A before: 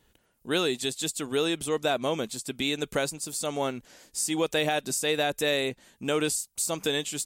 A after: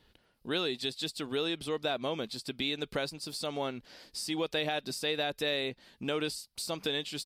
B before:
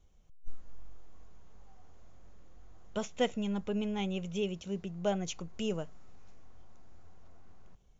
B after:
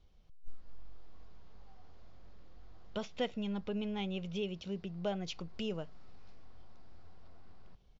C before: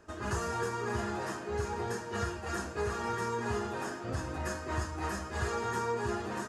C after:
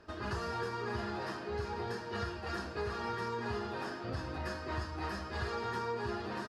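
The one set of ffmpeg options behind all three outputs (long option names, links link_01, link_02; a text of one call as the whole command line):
ffmpeg -i in.wav -af "aresample=32000,aresample=44100,highshelf=frequency=5700:width_type=q:width=3:gain=-6.5,acompressor=threshold=-40dB:ratio=1.5" out.wav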